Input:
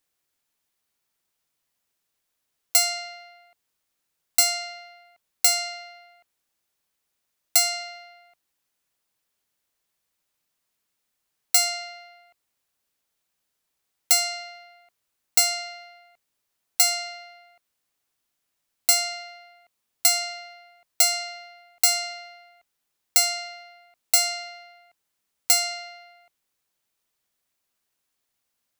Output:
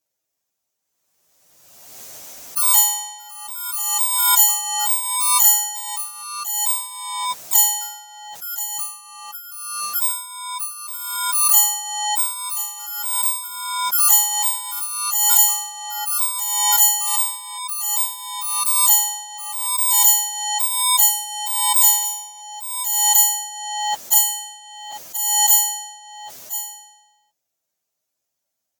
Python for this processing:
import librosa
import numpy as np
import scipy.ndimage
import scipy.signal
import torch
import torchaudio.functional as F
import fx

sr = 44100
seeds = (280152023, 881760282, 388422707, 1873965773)

p1 = fx.partial_stretch(x, sr, pct=118)
p2 = fx.graphic_eq_15(p1, sr, hz=(630, 6300, 16000), db=(9, 10, 11))
p3 = p2 + fx.echo_single(p2, sr, ms=1028, db=-12.5, dry=0)
p4 = fx.echo_pitch(p3, sr, ms=316, semitones=3, count=3, db_per_echo=-6.0)
p5 = scipy.signal.sosfilt(scipy.signal.butter(2, 83.0, 'highpass', fs=sr, output='sos'), p4)
p6 = fx.low_shelf(p5, sr, hz=340.0, db=3.0)
y = fx.pre_swell(p6, sr, db_per_s=34.0)